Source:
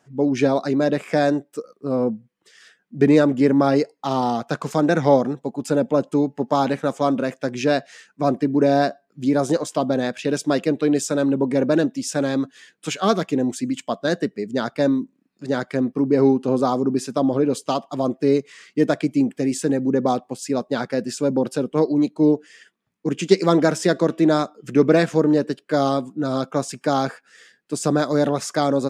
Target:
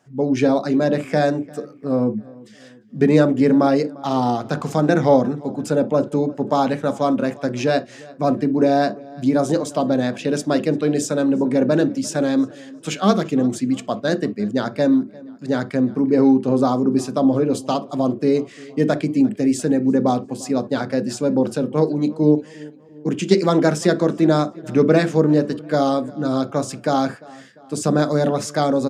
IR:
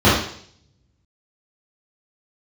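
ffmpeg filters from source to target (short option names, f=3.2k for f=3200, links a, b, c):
-filter_complex "[0:a]asplit=2[a][b];[b]adelay=348,lowpass=f=3.7k:p=1,volume=-22dB,asplit=2[c][d];[d]adelay=348,lowpass=f=3.7k:p=1,volume=0.52,asplit=2[e][f];[f]adelay=348,lowpass=f=3.7k:p=1,volume=0.52,asplit=2[g][h];[h]adelay=348,lowpass=f=3.7k:p=1,volume=0.52[i];[a][c][e][g][i]amix=inputs=5:normalize=0,asplit=2[j][k];[1:a]atrim=start_sample=2205,atrim=end_sample=3087,lowshelf=f=460:g=10[l];[k][l]afir=irnorm=-1:irlink=0,volume=-39.5dB[m];[j][m]amix=inputs=2:normalize=0"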